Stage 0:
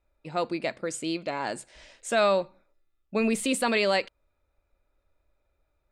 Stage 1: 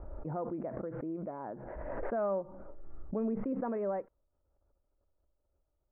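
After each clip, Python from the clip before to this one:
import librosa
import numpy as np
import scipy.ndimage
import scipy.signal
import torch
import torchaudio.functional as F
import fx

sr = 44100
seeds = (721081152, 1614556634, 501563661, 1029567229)

y = scipy.signal.sosfilt(scipy.signal.bessel(8, 800.0, 'lowpass', norm='mag', fs=sr, output='sos'), x)
y = fx.pre_swell(y, sr, db_per_s=26.0)
y = y * librosa.db_to_amplitude(-7.5)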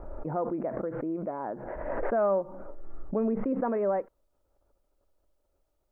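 y = fx.peak_eq(x, sr, hz=73.0, db=-8.5, octaves=2.4)
y = y * librosa.db_to_amplitude(7.5)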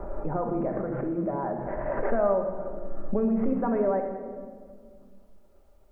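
y = fx.room_shoebox(x, sr, seeds[0], volume_m3=1000.0, walls='mixed', distance_m=1.2)
y = fx.band_squash(y, sr, depth_pct=40)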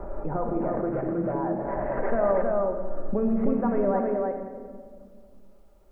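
y = x + 10.0 ** (-3.0 / 20.0) * np.pad(x, (int(316 * sr / 1000.0), 0))[:len(x)]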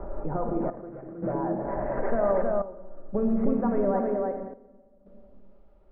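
y = fx.step_gate(x, sr, bpm=86, pattern='xxxx...xxxx', floor_db=-12.0, edge_ms=4.5)
y = fx.air_absorb(y, sr, metres=350.0)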